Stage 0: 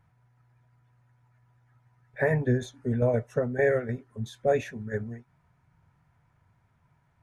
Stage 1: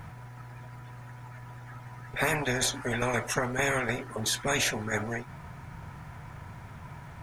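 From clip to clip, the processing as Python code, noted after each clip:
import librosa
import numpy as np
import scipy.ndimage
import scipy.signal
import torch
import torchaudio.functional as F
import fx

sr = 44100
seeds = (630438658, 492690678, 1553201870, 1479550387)

y = fx.spectral_comp(x, sr, ratio=4.0)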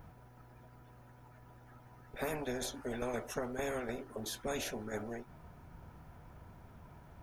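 y = fx.graphic_eq(x, sr, hz=(125, 1000, 2000, 4000, 8000), db=(-11, -6, -11, -5, -10))
y = F.gain(torch.from_numpy(y), -4.0).numpy()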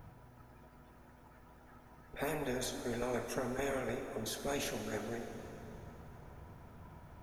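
y = fx.rev_plate(x, sr, seeds[0], rt60_s=3.9, hf_ratio=0.75, predelay_ms=0, drr_db=5.5)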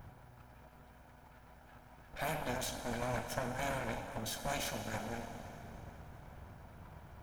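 y = fx.lower_of_two(x, sr, delay_ms=1.3)
y = F.gain(torch.from_numpy(y), 1.5).numpy()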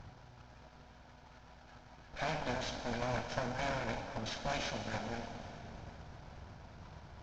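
y = fx.cvsd(x, sr, bps=32000)
y = F.gain(torch.from_numpy(y), 1.0).numpy()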